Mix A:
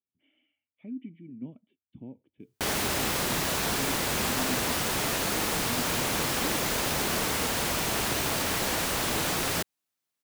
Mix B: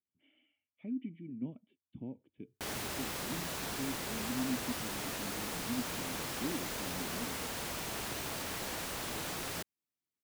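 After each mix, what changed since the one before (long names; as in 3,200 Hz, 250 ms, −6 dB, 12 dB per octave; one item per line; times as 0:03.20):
background −11.0 dB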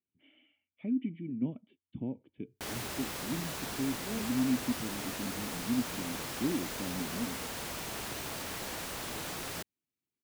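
speech +6.5 dB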